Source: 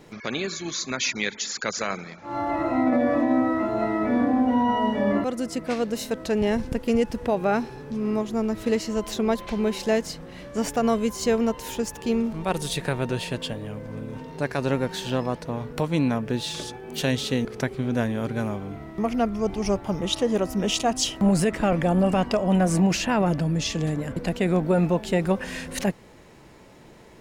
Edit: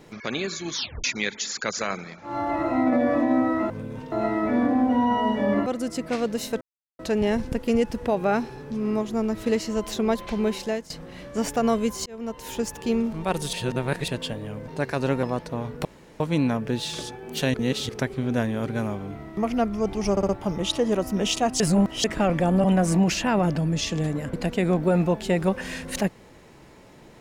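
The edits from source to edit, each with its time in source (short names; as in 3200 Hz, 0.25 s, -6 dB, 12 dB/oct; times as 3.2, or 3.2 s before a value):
0.74 tape stop 0.30 s
6.19 insert silence 0.38 s
9.71–10.1 fade out, to -15 dB
11.26–11.8 fade in
12.73–13.28 reverse
13.88–14.3 move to 3.7
14.85–15.19 cut
15.81 insert room tone 0.35 s
17.15–17.5 reverse
19.72 stutter 0.06 s, 4 plays
21.03–21.47 reverse
22.07–22.47 cut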